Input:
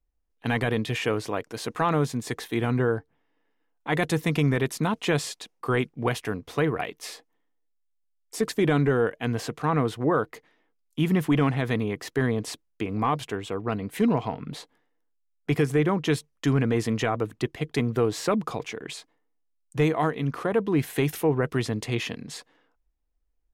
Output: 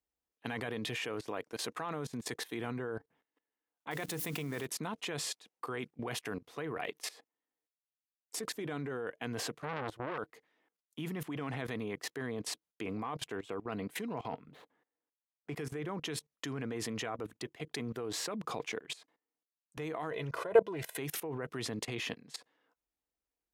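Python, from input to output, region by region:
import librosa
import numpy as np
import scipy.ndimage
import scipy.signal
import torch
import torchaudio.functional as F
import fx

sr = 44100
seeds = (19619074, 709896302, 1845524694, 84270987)

y = fx.chain(x, sr, fx.crossing_spikes(level_db=-29.0),
    fx.hum_notches(base_hz=60, count=5), at=(3.91, 4.66))
y = fx.chain(y, sr, fx.peak_eq(hz=95.0, db=7.5, octaves=1.1),
    fx.transformer_sat(knee_hz=1500.0), at=(9.55, 10.18))
y = fx.chain(y, sr, fx.median_filter(points=9),
    fx.high_shelf(hz=4600.0, db=-10.5), at=(14.46, 15.56))
y = fx.chain(y, sr, fx.peak_eq(hz=660.0, db=13.5, octaves=0.22),
    fx.comb(ms=2.0, depth=0.76),
    fx.doppler_dist(depth_ms=0.12), at=(20.11, 20.98))
y = scipy.signal.sosfilt(scipy.signal.butter(2, 82.0, 'highpass', fs=sr, output='sos'), y)
y = fx.low_shelf(y, sr, hz=170.0, db=-10.0)
y = fx.level_steps(y, sr, step_db=19)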